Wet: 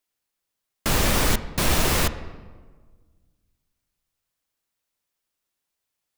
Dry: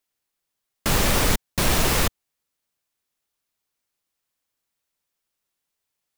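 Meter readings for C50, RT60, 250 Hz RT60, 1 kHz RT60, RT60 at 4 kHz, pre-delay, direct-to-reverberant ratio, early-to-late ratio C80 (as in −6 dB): 13.5 dB, 1.5 s, 1.9 s, 1.4 s, 0.90 s, 3 ms, 11.0 dB, 14.5 dB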